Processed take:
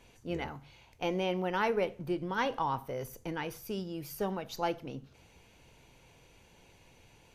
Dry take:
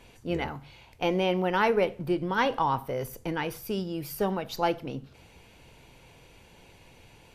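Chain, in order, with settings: bell 6300 Hz +6 dB 0.22 oct; gain -6 dB

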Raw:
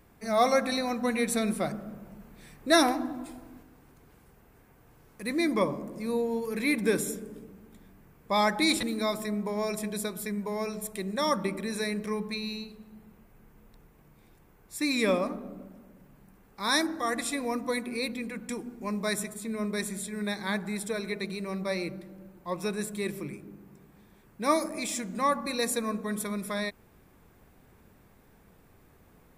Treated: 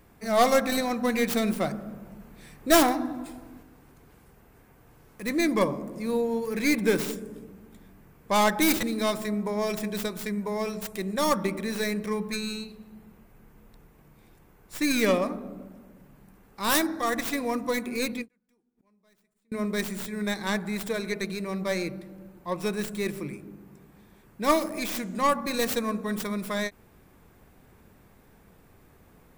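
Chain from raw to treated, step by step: tracing distortion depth 0.36 ms; 18.28–19.52 flipped gate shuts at -37 dBFS, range -38 dB; ending taper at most 490 dB/s; gain +2.5 dB

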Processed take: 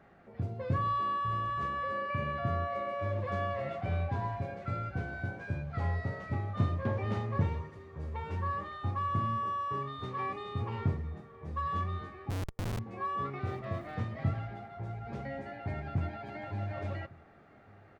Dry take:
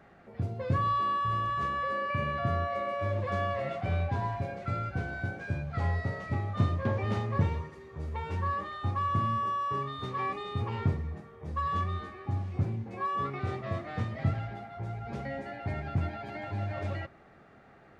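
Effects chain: high shelf 3500 Hz -5 dB; 12.3–12.79 Schmitt trigger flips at -32 dBFS; echo 1.155 s -24 dB; gain -2.5 dB

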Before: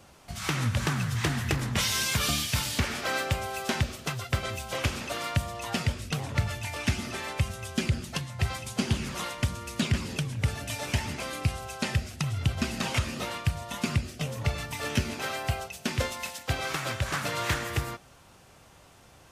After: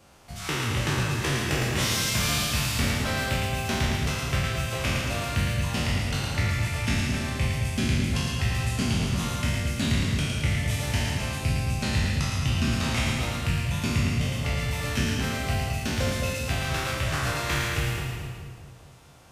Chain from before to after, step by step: spectral trails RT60 1.59 s; split-band echo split 650 Hz, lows 0.213 s, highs 0.111 s, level -5 dB; gain -3.5 dB

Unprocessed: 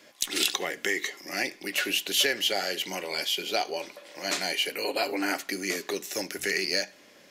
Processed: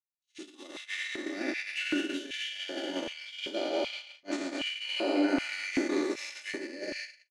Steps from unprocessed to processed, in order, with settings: spectral trails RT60 2.75 s; steep low-pass 10000 Hz 36 dB/oct; notches 60/120/180/240/300/360/420/480/540/600 Hz; comb 3.4 ms, depth 64%; limiter -15 dBFS, peak gain reduction 11 dB; tilt -3 dB/oct; split-band echo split 510 Hz, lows 0.169 s, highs 0.117 s, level -9 dB; gate -25 dBFS, range -53 dB; LFO high-pass square 1.3 Hz 280–2400 Hz; gain -8.5 dB

